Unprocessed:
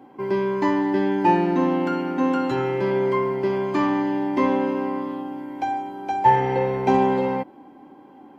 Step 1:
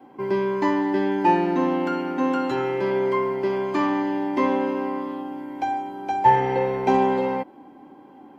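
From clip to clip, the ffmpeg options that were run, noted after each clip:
ffmpeg -i in.wav -af "adynamicequalizer=threshold=0.01:dfrequency=120:dqfactor=0.95:tfrequency=120:tqfactor=0.95:attack=5:release=100:ratio=0.375:range=3.5:mode=cutabove:tftype=bell" out.wav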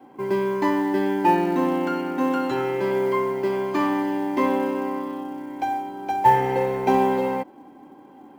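ffmpeg -i in.wav -af "acrusher=bits=8:mode=log:mix=0:aa=0.000001" out.wav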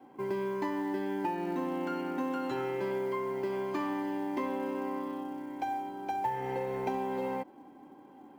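ffmpeg -i in.wav -af "acompressor=threshold=-23dB:ratio=10,volume=-6.5dB" out.wav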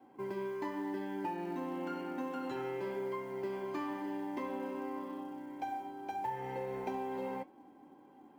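ffmpeg -i in.wav -af "flanger=delay=9:depth=3.8:regen=-64:speed=0.92:shape=sinusoidal,volume=-1dB" out.wav

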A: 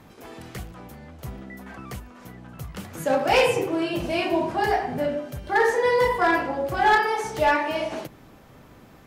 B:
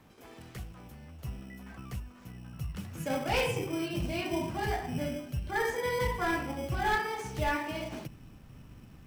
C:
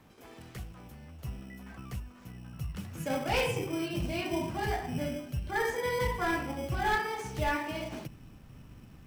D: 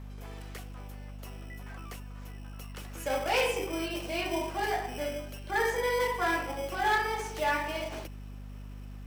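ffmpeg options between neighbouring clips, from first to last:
ffmpeg -i in.wav -filter_complex "[0:a]asubboost=boost=4:cutoff=230,acrossover=split=570[link_01][link_02];[link_01]acrusher=samples=16:mix=1:aa=0.000001[link_03];[link_03][link_02]amix=inputs=2:normalize=0,volume=-9dB" out.wav
ffmpeg -i in.wav -af anull out.wav
ffmpeg -i in.wav -filter_complex "[0:a]highpass=frequency=360:width=0.5412,highpass=frequency=360:width=1.3066,aeval=exprs='val(0)+0.00562*(sin(2*PI*50*n/s)+sin(2*PI*2*50*n/s)/2+sin(2*PI*3*50*n/s)/3+sin(2*PI*4*50*n/s)/4+sin(2*PI*5*50*n/s)/5)':channel_layout=same,asplit=2[link_01][link_02];[link_02]asoftclip=type=hard:threshold=-29dB,volume=-6.5dB[link_03];[link_01][link_03]amix=inputs=2:normalize=0" out.wav

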